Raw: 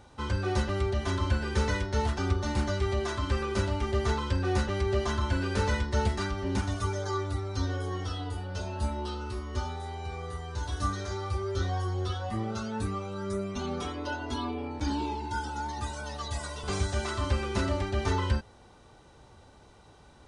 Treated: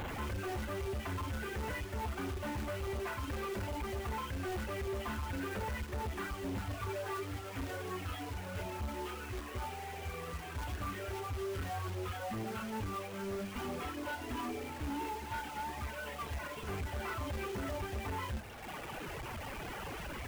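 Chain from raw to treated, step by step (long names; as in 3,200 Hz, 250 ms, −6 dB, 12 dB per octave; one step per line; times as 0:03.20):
linear delta modulator 16 kbit/s, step −35.5 dBFS
reverb reduction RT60 1.6 s
0:07.20–0:07.61: high-pass filter 150 Hz 6 dB per octave
brickwall limiter −26 dBFS, peak gain reduction 10.5 dB
upward compression, threshold −40 dBFS
log-companded quantiser 4 bits
flanger 0.5 Hz, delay 3.3 ms, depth 6.8 ms, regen −84%
soft clipping −39 dBFS, distortion −10 dB
level +5 dB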